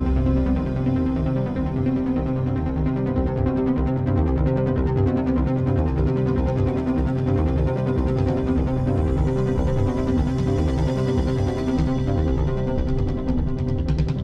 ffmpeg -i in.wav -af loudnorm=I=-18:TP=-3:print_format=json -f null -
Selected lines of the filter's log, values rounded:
"input_i" : "-22.4",
"input_tp" : "-8.7",
"input_lra" : "1.7",
"input_thresh" : "-32.4",